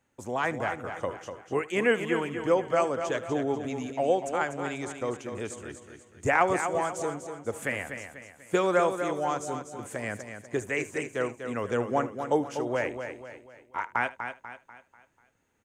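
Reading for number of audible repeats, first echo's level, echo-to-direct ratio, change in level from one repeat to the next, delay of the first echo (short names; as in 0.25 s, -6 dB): 7, -19.0 dB, -7.0 dB, no steady repeat, 75 ms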